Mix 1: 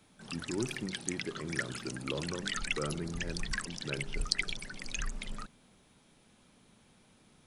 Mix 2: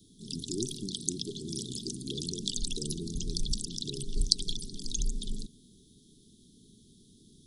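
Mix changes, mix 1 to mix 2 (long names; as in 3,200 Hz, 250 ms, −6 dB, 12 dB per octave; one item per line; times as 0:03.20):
background +6.5 dB
master: add Chebyshev band-stop filter 420–3,400 Hz, order 5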